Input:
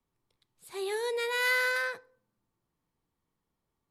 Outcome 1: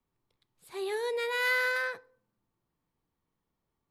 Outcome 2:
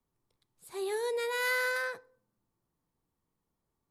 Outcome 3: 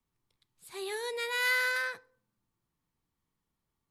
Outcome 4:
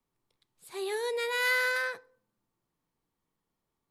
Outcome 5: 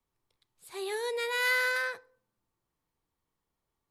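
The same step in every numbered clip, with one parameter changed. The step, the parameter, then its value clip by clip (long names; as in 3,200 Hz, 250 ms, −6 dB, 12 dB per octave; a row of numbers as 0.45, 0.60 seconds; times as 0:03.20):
parametric band, centre frequency: 8,600, 2,800, 520, 67, 190 Hertz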